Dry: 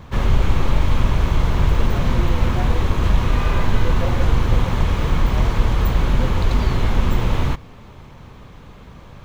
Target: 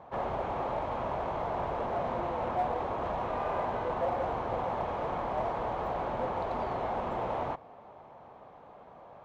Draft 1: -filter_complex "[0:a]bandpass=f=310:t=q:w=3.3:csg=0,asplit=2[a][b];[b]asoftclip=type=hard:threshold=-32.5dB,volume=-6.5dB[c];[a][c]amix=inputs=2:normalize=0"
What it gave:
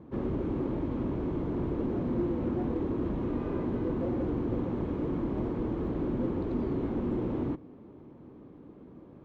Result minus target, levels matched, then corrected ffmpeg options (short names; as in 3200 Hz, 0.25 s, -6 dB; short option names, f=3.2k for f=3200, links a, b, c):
1000 Hz band -14.5 dB
-filter_complex "[0:a]bandpass=f=710:t=q:w=3.3:csg=0,asplit=2[a][b];[b]asoftclip=type=hard:threshold=-32.5dB,volume=-6.5dB[c];[a][c]amix=inputs=2:normalize=0"